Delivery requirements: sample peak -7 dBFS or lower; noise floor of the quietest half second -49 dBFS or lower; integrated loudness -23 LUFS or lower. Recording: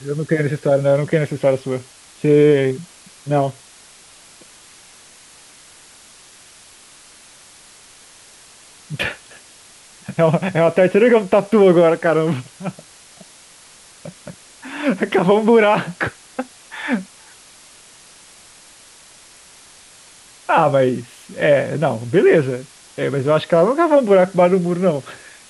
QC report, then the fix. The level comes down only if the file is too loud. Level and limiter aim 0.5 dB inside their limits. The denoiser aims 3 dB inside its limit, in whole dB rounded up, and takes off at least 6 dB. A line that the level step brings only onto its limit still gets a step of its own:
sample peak -4.0 dBFS: fail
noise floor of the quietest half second -45 dBFS: fail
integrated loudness -16.5 LUFS: fail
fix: gain -7 dB

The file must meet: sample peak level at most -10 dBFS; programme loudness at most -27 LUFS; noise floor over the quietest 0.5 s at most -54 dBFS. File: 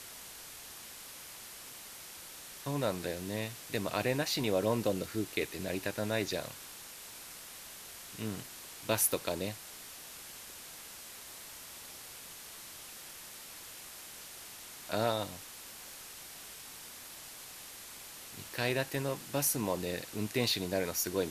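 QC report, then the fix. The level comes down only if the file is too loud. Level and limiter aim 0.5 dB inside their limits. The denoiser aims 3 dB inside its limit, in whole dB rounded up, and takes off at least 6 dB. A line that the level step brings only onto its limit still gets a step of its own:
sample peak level -13.0 dBFS: OK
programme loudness -37.0 LUFS: OK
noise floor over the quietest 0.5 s -49 dBFS: fail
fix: denoiser 8 dB, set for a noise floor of -49 dBFS

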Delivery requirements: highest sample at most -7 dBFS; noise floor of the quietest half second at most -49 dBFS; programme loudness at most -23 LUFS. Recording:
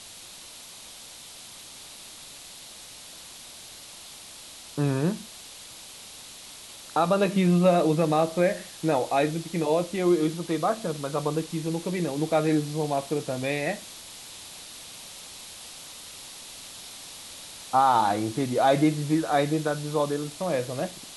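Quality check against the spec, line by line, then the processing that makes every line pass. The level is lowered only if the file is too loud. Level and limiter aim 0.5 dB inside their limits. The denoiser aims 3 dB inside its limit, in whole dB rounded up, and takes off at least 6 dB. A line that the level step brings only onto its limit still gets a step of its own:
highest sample -10.0 dBFS: OK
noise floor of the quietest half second -45 dBFS: fail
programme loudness -25.5 LUFS: OK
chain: denoiser 7 dB, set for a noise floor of -45 dBFS

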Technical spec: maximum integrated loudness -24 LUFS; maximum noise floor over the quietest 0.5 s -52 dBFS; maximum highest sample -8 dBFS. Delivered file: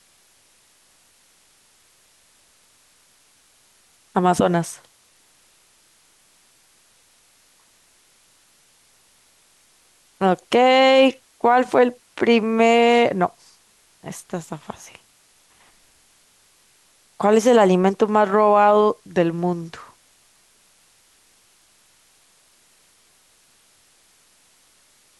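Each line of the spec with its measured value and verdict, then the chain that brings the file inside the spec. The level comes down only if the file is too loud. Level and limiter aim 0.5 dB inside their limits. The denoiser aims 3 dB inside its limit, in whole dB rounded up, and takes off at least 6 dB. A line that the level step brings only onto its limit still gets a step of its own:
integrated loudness -18.0 LUFS: fail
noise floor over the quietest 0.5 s -58 dBFS: OK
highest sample -5.5 dBFS: fail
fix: gain -6.5 dB

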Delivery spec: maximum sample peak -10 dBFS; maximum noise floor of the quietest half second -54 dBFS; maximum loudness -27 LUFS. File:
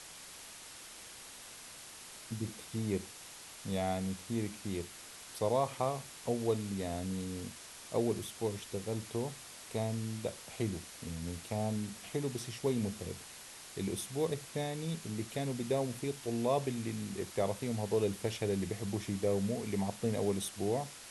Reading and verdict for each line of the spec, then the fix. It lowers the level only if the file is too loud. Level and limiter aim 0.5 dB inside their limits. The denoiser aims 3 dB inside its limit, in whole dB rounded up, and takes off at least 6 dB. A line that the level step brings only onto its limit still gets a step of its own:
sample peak -19.0 dBFS: OK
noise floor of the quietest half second -51 dBFS: fail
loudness -36.5 LUFS: OK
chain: denoiser 6 dB, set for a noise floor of -51 dBFS

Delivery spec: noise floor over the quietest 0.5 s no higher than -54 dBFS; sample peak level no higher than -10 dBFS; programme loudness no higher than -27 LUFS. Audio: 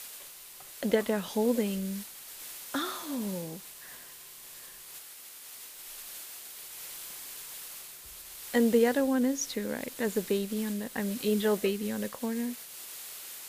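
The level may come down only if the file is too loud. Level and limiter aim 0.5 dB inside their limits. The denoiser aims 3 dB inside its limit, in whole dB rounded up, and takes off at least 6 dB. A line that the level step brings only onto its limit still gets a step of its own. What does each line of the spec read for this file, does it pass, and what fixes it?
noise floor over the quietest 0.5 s -48 dBFS: fail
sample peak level -11.5 dBFS: OK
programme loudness -32.0 LUFS: OK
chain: denoiser 9 dB, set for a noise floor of -48 dBFS

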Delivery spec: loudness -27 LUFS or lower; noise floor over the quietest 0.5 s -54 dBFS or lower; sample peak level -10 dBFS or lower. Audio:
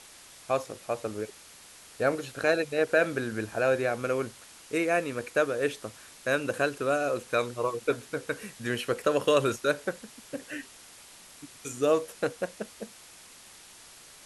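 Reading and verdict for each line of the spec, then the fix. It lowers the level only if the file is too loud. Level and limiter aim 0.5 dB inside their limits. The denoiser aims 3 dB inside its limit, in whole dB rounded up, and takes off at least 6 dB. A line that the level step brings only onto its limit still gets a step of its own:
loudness -29.0 LUFS: OK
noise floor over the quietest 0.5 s -51 dBFS: fail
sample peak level -11.0 dBFS: OK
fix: denoiser 6 dB, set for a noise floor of -51 dBFS

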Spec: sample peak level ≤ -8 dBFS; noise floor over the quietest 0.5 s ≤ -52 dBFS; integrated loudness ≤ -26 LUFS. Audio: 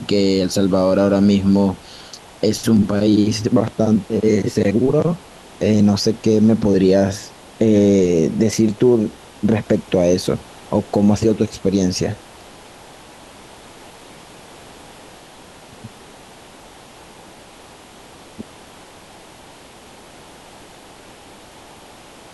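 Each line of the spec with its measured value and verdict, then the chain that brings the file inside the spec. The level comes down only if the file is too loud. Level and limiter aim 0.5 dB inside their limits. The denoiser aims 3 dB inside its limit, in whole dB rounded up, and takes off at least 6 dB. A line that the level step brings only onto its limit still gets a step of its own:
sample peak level -3.0 dBFS: fail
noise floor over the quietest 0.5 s -42 dBFS: fail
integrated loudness -17.0 LUFS: fail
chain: denoiser 6 dB, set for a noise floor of -42 dBFS; gain -9.5 dB

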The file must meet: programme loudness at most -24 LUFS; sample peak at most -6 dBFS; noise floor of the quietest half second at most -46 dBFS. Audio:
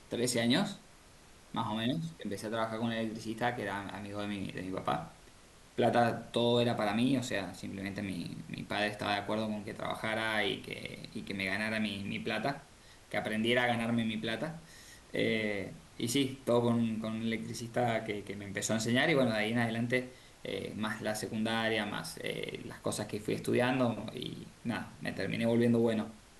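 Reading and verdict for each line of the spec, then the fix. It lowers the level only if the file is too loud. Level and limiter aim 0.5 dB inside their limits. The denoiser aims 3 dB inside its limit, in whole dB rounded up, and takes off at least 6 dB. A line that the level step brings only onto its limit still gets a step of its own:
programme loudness -33.5 LUFS: OK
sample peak -16.0 dBFS: OK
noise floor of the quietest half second -57 dBFS: OK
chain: none

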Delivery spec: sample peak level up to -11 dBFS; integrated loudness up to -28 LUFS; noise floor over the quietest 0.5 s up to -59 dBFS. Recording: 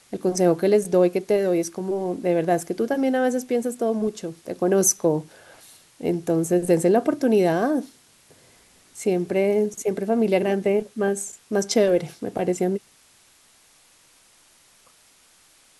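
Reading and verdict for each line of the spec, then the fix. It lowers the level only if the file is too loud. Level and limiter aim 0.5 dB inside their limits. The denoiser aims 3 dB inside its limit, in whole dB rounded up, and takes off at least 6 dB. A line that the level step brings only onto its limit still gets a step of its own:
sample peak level -6.5 dBFS: fail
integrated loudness -22.5 LUFS: fail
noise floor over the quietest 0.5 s -57 dBFS: fail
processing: gain -6 dB

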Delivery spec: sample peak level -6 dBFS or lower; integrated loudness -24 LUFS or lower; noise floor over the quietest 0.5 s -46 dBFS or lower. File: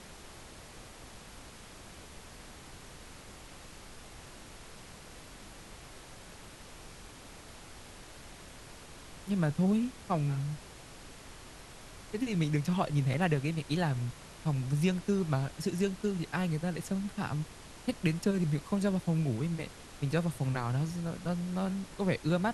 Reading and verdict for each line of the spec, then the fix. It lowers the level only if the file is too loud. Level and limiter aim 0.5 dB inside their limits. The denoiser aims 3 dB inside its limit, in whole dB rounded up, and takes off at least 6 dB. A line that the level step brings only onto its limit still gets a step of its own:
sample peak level -15.0 dBFS: OK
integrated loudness -32.5 LUFS: OK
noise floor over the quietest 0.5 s -50 dBFS: OK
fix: none

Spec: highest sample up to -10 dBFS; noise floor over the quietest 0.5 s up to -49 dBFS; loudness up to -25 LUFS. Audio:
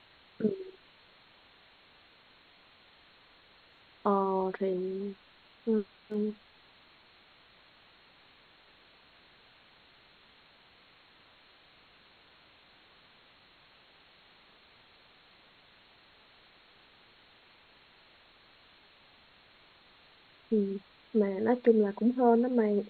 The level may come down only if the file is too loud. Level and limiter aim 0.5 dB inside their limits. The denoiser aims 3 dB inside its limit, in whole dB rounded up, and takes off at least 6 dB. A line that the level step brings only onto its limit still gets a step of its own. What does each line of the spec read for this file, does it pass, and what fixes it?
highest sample -11.5 dBFS: OK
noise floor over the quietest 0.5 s -61 dBFS: OK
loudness -30.0 LUFS: OK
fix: none

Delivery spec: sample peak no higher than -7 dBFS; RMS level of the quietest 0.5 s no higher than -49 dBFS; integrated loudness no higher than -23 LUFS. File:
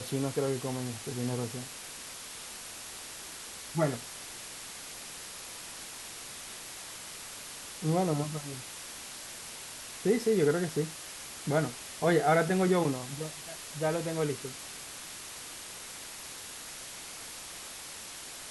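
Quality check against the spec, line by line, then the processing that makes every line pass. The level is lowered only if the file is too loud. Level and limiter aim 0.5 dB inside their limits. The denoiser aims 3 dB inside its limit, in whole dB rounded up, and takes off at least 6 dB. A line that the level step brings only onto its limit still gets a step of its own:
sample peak -14.0 dBFS: OK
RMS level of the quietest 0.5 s -44 dBFS: fail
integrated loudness -34.0 LUFS: OK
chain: denoiser 8 dB, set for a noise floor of -44 dBFS

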